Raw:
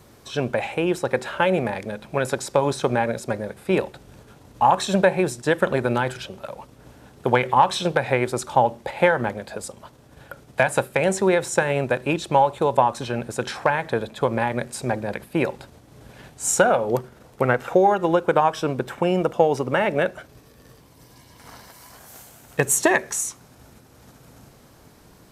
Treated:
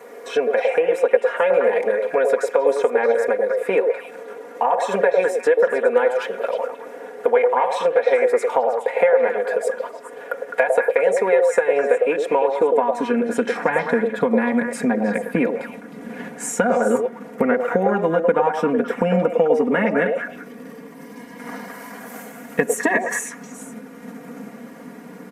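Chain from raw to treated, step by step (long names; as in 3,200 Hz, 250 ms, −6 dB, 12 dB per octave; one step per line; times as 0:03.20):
comb filter 4.2 ms, depth 98%
high-pass filter sweep 460 Hz → 210 Hz, 0:12.03–0:13.69
downward compressor 3 to 1, threshold −26 dBFS, peak gain reduction 16.5 dB
octave-band graphic EQ 125/250/500/1,000/2,000/4,000 Hz +7/+5/+6/+3/+12/−7 dB
echo through a band-pass that steps 104 ms, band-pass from 550 Hz, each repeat 1.4 octaves, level −1 dB
level −1 dB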